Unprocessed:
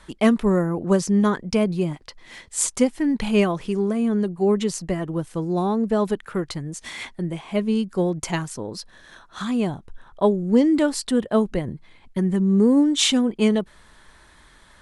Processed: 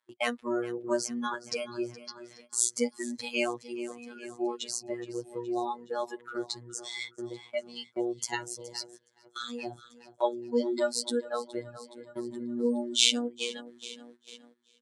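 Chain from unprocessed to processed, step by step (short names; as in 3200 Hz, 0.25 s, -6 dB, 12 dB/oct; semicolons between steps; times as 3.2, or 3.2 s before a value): spectral noise reduction 20 dB; feedback echo 0.419 s, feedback 57%, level -19 dB; robotiser 120 Hz; dynamic EQ 1200 Hz, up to -4 dB, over -40 dBFS, Q 1.4; gate -48 dBFS, range -15 dB; weighting filter A; in parallel at -3 dB: compressor, threshold -41 dBFS, peak gain reduction 23.5 dB; on the sum: gain -1.5 dB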